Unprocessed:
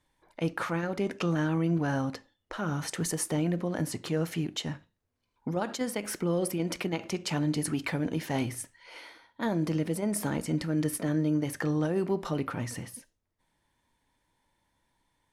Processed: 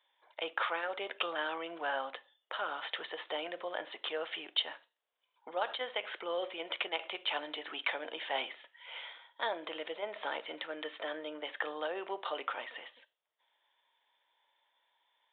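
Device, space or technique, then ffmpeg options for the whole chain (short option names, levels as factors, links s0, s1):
musical greeting card: -af "aresample=8000,aresample=44100,highpass=f=550:w=0.5412,highpass=f=550:w=1.3066,equalizer=f=3300:t=o:w=0.45:g=8.5"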